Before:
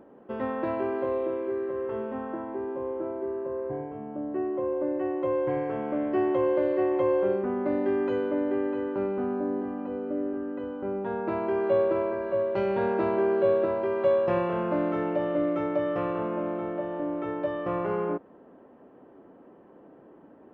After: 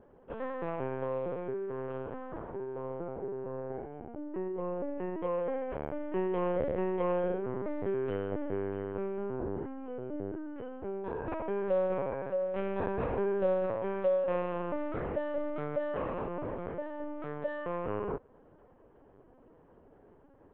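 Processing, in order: LPC vocoder at 8 kHz pitch kept; low shelf 120 Hz -6.5 dB; gain -5 dB

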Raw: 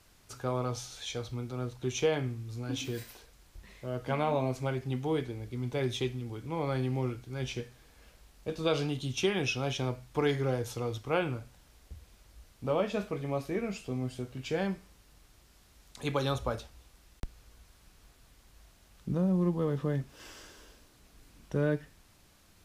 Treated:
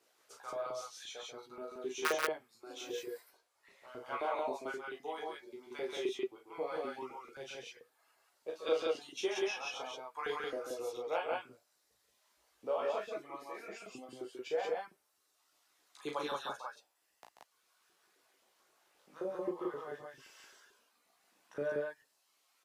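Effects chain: reverb removal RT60 1.5 s; chorus voices 2, 0.13 Hz, delay 16 ms, depth 3.3 ms; wrapped overs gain 18.5 dB; LFO high-pass saw up 3.8 Hz 340–1600 Hz; on a send: loudspeakers at several distances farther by 12 m -5 dB, 47 m -7 dB, 61 m -1 dB; on the sum: gain -6.5 dB

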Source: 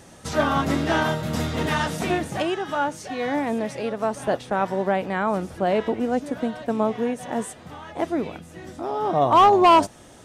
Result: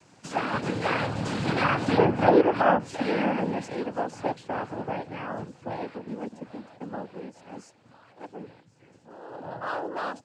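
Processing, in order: Doppler pass-by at 2.31, 23 m/s, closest 9.7 m; treble ducked by the level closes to 1200 Hz, closed at -23 dBFS; noise vocoder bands 8; gain +7 dB

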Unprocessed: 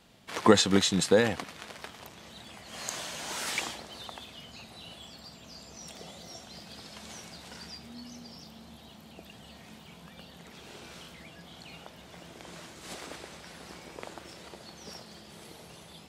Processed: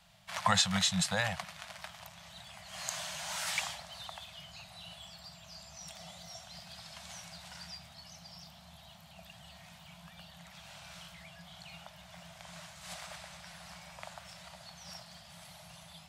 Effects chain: elliptic band-stop 180–620 Hz, stop band 40 dB; gain -1.5 dB

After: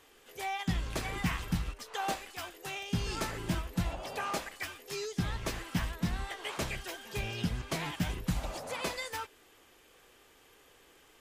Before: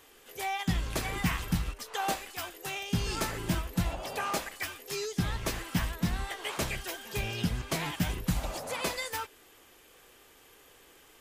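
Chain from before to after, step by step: high shelf 11000 Hz -8.5 dB; gain -2.5 dB

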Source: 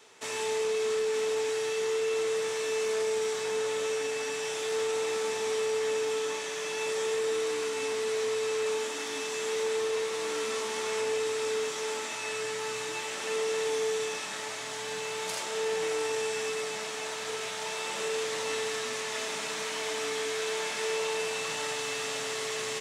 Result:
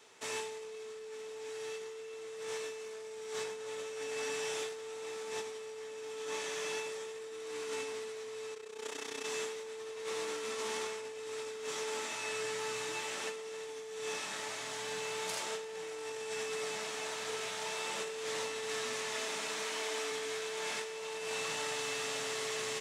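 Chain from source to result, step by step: 19.2–20.1 HPF 130 Hz -> 270 Hz 12 dB/oct; negative-ratio compressor -33 dBFS, ratio -0.5; 8.54–9.25 AM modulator 31 Hz, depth 65%; gain -6 dB

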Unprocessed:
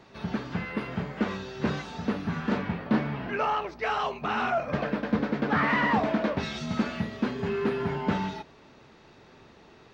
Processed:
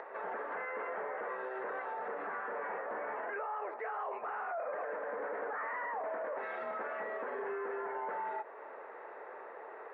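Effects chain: Chebyshev band-pass 470–1900 Hz, order 3; tilt shelf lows +3 dB, about 1500 Hz; limiter -37.5 dBFS, peak gain reduction 20.5 dB; upward compressor, threshold -48 dBFS; gain +6 dB

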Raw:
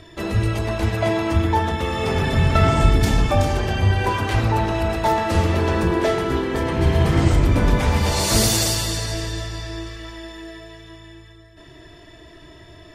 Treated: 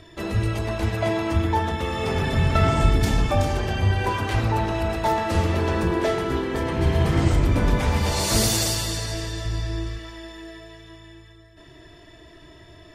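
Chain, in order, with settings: 9.45–9.99 low shelf 250 Hz +9 dB; gain -3 dB

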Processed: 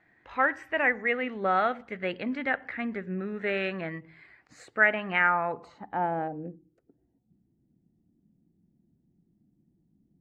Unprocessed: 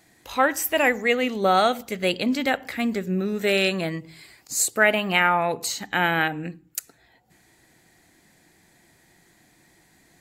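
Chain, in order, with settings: low-pass sweep 1800 Hz -> 220 Hz, 5.2–7.34; gain -8.5 dB

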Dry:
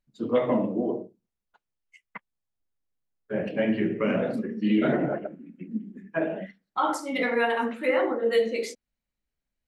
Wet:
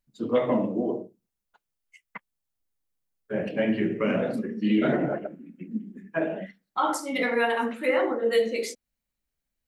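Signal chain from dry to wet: high shelf 7000 Hz +7.5 dB

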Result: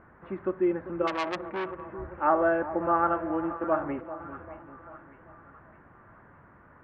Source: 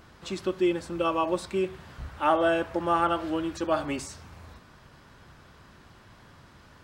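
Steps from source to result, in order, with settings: steep low-pass 1900 Hz 36 dB/oct; 2.86–4.2 gate -34 dBFS, range -9 dB; low shelf 150 Hz -6.5 dB; split-band echo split 1100 Hz, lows 0.393 s, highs 0.609 s, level -12.5 dB; 1.07–1.86 core saturation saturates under 2200 Hz

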